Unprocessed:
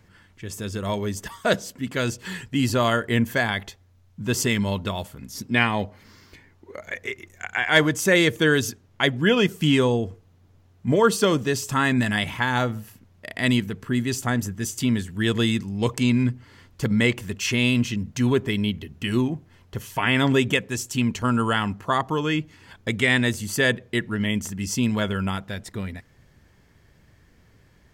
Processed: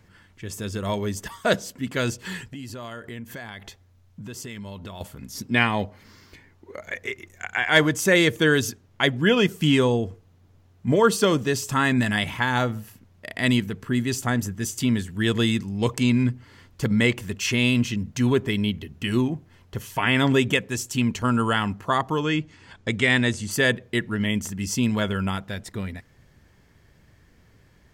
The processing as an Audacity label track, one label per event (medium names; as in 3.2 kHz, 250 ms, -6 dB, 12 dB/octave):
2.430000	5.010000	compression 5:1, threshold -35 dBFS
22.220000	23.510000	low-pass 8.8 kHz 24 dB/octave